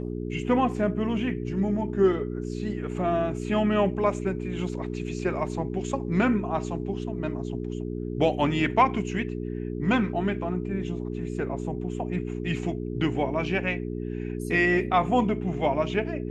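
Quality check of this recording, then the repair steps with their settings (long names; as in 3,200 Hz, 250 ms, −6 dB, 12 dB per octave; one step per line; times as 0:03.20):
mains hum 60 Hz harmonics 7 −32 dBFS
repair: hum removal 60 Hz, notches 7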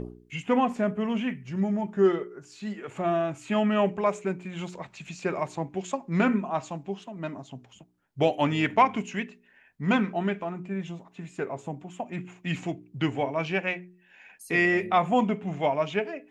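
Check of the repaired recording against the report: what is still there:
none of them is left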